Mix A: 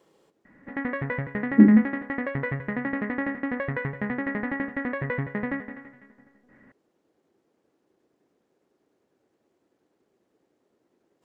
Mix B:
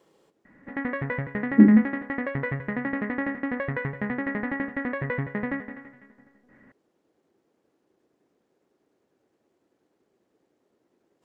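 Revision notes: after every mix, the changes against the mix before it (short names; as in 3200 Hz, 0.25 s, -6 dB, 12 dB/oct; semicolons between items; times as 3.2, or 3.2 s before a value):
none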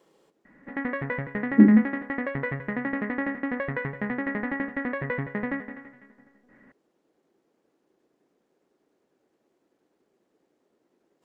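master: add bell 96 Hz -10.5 dB 0.6 oct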